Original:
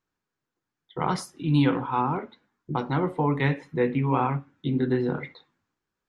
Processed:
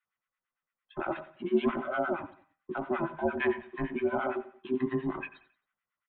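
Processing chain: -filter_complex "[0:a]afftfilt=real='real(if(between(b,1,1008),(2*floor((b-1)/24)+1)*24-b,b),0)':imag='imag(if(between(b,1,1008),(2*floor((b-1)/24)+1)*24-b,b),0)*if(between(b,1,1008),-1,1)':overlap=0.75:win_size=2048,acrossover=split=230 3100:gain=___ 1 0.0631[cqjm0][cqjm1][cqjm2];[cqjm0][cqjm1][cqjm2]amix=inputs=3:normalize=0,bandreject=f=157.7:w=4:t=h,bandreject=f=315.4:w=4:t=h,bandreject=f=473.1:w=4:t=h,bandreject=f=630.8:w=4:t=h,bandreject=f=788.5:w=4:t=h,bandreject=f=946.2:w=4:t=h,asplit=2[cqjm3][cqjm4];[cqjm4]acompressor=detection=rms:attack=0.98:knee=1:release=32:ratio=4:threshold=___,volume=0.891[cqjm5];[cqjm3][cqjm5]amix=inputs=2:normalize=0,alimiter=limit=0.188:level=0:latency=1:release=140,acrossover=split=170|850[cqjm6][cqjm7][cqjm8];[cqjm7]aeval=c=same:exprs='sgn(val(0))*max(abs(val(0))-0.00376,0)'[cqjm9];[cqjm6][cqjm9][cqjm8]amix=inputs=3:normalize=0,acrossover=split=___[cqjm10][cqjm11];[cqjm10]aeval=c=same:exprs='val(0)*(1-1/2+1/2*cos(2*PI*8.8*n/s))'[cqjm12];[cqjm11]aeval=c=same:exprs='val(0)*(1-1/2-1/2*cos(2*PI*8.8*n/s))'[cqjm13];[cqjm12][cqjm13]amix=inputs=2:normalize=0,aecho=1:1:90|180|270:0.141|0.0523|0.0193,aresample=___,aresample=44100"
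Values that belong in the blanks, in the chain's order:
0.141, 0.0141, 1000, 8000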